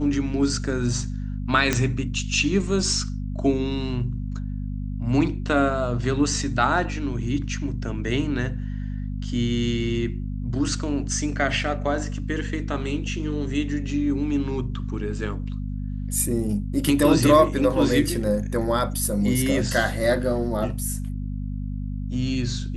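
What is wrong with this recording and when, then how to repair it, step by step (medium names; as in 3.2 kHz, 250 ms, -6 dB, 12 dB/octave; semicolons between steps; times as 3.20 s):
hum 50 Hz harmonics 5 -29 dBFS
1.73 s: pop -6 dBFS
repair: de-click; de-hum 50 Hz, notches 5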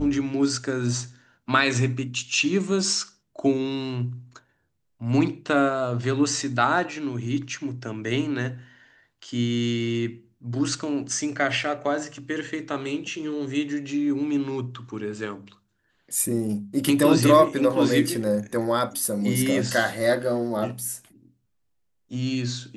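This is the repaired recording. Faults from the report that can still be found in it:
nothing left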